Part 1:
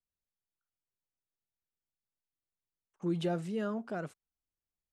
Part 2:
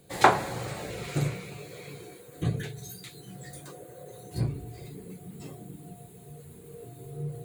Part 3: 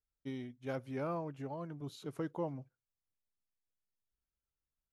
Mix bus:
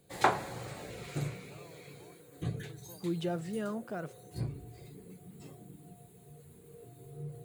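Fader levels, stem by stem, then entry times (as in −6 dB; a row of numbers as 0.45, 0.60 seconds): −1.5, −7.5, −18.0 decibels; 0.00, 0.00, 0.50 seconds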